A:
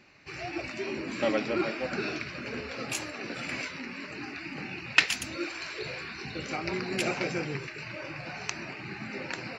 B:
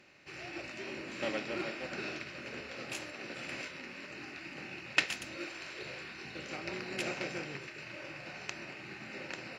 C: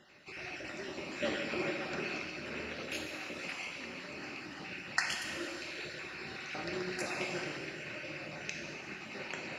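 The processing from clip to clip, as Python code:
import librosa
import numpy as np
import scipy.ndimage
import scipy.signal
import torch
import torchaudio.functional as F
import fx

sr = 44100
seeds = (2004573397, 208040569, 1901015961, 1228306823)

y1 = fx.bin_compress(x, sr, power=0.6)
y1 = fx.upward_expand(y1, sr, threshold_db=-40.0, expansion=1.5)
y1 = F.gain(torch.from_numpy(y1), -7.5).numpy()
y2 = fx.spec_dropout(y1, sr, seeds[0], share_pct=32)
y2 = fx.rev_plate(y2, sr, seeds[1], rt60_s=1.8, hf_ratio=1.0, predelay_ms=0, drr_db=1.5)
y2 = F.gain(torch.from_numpy(y2), 1.0).numpy()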